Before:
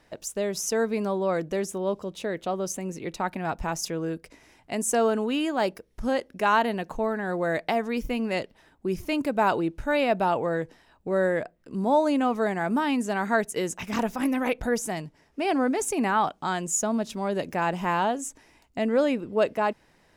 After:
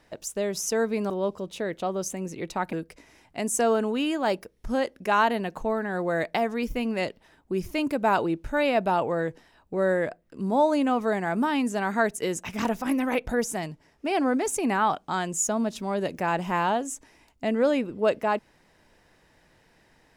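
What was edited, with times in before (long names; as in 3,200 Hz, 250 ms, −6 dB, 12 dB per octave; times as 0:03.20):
0:01.10–0:01.74: remove
0:03.37–0:04.07: remove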